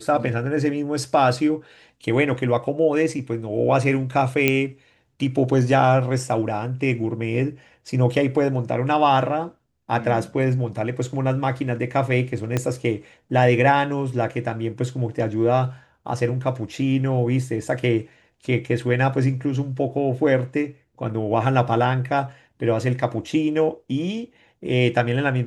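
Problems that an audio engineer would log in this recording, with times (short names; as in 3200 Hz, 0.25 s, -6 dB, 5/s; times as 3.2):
4.48 pop -4 dBFS
12.57 pop -9 dBFS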